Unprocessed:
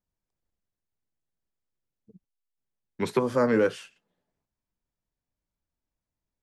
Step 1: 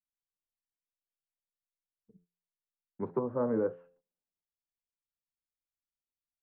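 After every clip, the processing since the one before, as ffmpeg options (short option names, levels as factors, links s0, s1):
-af "lowpass=f=1100:w=0.5412,lowpass=f=1100:w=1.3066,bandreject=f=87.25:t=h:w=4,bandreject=f=174.5:t=h:w=4,bandreject=f=261.75:t=h:w=4,bandreject=f=349:t=h:w=4,bandreject=f=436.25:t=h:w=4,bandreject=f=523.5:t=h:w=4,bandreject=f=610.75:t=h:w=4,bandreject=f=698:t=h:w=4,bandreject=f=785.25:t=h:w=4,agate=range=0.178:threshold=0.00112:ratio=16:detection=peak,volume=0.447"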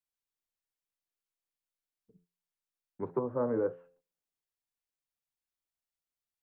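-af "equalizer=f=210:w=7.3:g=-9.5"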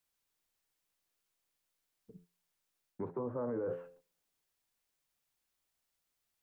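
-af "areverse,acompressor=threshold=0.0126:ratio=5,areverse,alimiter=level_in=5.31:limit=0.0631:level=0:latency=1:release=38,volume=0.188,volume=2.82"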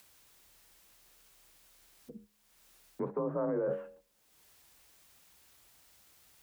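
-filter_complex "[0:a]asplit=2[s0][s1];[s1]acompressor=mode=upward:threshold=0.00562:ratio=2.5,volume=1.33[s2];[s0][s2]amix=inputs=2:normalize=0,afreqshift=34,volume=0.708"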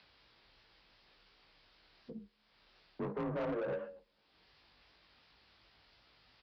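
-af "aresample=11025,aresample=44100,flanger=delay=17.5:depth=3.7:speed=2.8,aresample=16000,asoftclip=type=tanh:threshold=0.0119,aresample=44100,volume=1.78"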